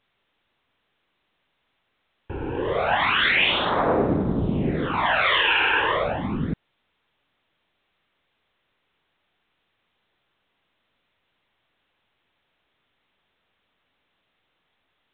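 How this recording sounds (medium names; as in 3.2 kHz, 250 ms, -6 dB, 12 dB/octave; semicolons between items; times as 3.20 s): phasing stages 12, 0.31 Hz, lowest notch 200–3100 Hz; a quantiser's noise floor 12-bit, dither triangular; µ-law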